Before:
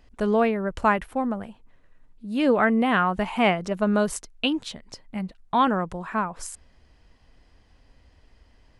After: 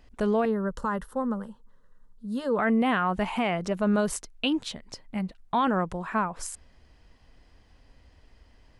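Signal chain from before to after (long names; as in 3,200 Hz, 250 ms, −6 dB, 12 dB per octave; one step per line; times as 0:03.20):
brickwall limiter −16.5 dBFS, peak gain reduction 8.5 dB
0:00.45–0:02.59: phaser with its sweep stopped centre 470 Hz, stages 8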